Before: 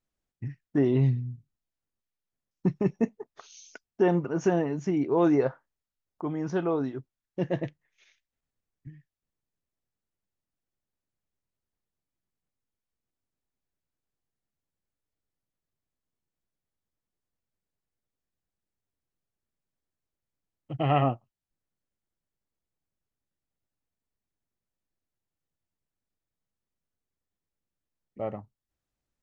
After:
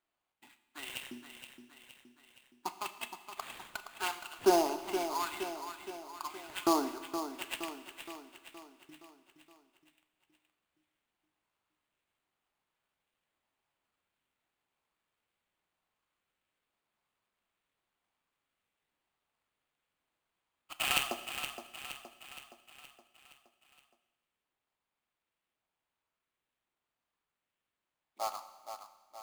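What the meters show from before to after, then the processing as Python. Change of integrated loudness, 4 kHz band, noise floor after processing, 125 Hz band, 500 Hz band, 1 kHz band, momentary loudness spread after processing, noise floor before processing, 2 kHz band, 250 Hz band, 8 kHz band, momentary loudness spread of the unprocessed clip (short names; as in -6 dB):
-8.5 dB, +11.0 dB, under -85 dBFS, -30.5 dB, -8.0 dB, -1.5 dB, 23 LU, under -85 dBFS, +2.5 dB, -11.5 dB, n/a, 17 LU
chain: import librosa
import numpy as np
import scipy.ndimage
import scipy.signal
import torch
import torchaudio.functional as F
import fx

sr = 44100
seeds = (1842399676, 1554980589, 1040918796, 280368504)

p1 = scipy.signal.sosfilt(scipy.signal.butter(4, 260.0, 'highpass', fs=sr, output='sos'), x)
p2 = fx.rider(p1, sr, range_db=10, speed_s=0.5)
p3 = p1 + (p2 * 10.0 ** (1.5 / 20.0))
p4 = fx.fixed_phaser(p3, sr, hz=1800.0, stages=6)
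p5 = fx.filter_lfo_highpass(p4, sr, shape='saw_up', hz=0.9, low_hz=350.0, high_hz=3600.0, q=1.7)
p6 = fx.sample_hold(p5, sr, seeds[0], rate_hz=5700.0, jitter_pct=20)
p7 = 10.0 ** (-12.5 / 20.0) * np.tanh(p6 / 10.0 ** (-12.5 / 20.0))
p8 = p7 + fx.echo_feedback(p7, sr, ms=469, feedback_pct=54, wet_db=-9.0, dry=0)
y = fx.rev_schroeder(p8, sr, rt60_s=1.3, comb_ms=26, drr_db=11.5)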